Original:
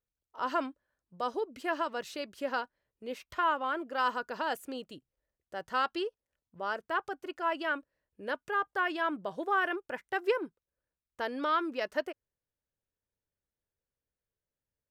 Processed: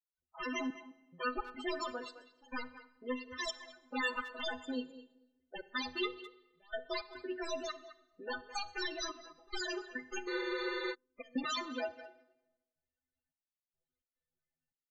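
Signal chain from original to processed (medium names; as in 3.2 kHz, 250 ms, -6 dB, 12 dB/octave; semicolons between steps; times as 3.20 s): peaking EQ 150 Hz -6 dB 0.34 oct; comb 7.3 ms, depth 58%; in parallel at +1 dB: compression 20:1, threshold -36 dBFS, peak gain reduction 17 dB; on the sum: integer overflow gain 22.5 dB; inharmonic resonator 75 Hz, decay 0.39 s, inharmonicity 0.03; trance gate ".xxxx...xx" 107 bpm -24 dB; loudest bins only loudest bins 16; on a send at -15.5 dB: reverberation RT60 1.0 s, pre-delay 36 ms; on the sum: resampled via 16 kHz; speakerphone echo 210 ms, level -13 dB; spectral freeze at 10.30 s, 0.62 s; trim +3.5 dB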